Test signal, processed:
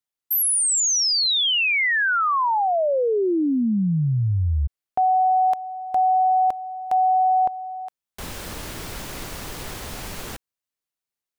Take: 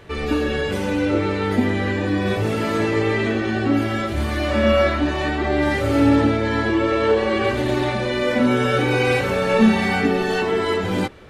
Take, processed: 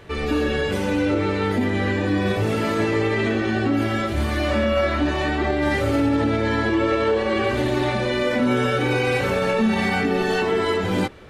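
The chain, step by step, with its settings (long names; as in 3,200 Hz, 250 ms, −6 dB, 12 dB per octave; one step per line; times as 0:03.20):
brickwall limiter −12 dBFS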